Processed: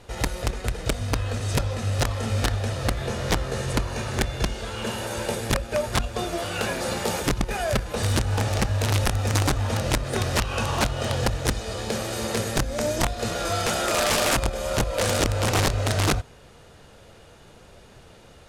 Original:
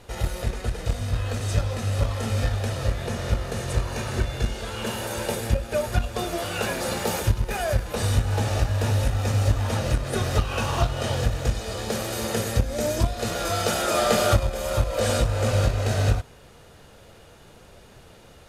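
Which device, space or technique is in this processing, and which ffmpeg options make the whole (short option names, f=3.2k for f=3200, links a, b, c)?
overflowing digital effects unit: -filter_complex "[0:a]asettb=1/sr,asplit=3[a][b][c];[a]atrim=end=2.954[d];[b]atrim=start=2.95:end=3.71,asetpts=PTS-STARTPTS,afade=t=in:d=0.004:c=qsin,afade=t=out:st=0.756:d=0.004:c=qsin,asplit=2[e][f];[f]adelay=15,volume=-4dB[g];[e][g]amix=inputs=2:normalize=0,atrim=end_sample=33516[h];[c]atrim=start=3.706[i];[d][h]acrossfade=d=0.004:c1=hsin:c2=qsin[j];[j][i]acrossfade=d=0.004:c1=qsin:c2=hsin,aeval=exprs='(mod(5.62*val(0)+1,2)-1)/5.62':c=same,lowpass=11k"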